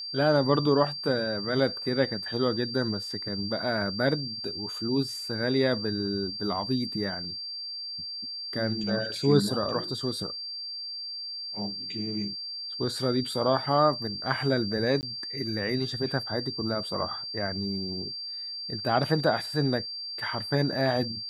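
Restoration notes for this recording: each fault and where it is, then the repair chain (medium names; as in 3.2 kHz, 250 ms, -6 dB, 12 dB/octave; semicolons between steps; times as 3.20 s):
whine 4.7 kHz -34 dBFS
15.01–15.03 s: dropout 19 ms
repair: band-stop 4.7 kHz, Q 30; interpolate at 15.01 s, 19 ms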